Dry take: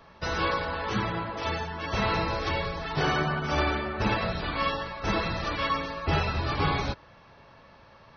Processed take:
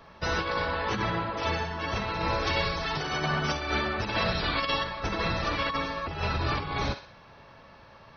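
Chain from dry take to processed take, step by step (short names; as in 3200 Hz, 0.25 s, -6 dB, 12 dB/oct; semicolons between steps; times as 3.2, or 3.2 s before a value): thinning echo 63 ms, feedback 45%, high-pass 960 Hz, level -8.5 dB; negative-ratio compressor -28 dBFS, ratio -0.5; 2.47–4.84 high shelf 3800 Hz +10 dB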